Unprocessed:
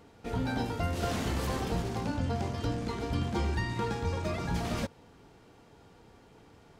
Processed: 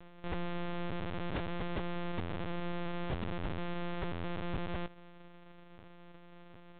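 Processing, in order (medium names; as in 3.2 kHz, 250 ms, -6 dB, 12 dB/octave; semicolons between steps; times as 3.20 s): sorted samples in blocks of 256 samples; LPC vocoder at 8 kHz pitch kept; peak limiter -29.5 dBFS, peak gain reduction 13.5 dB; trim +3.5 dB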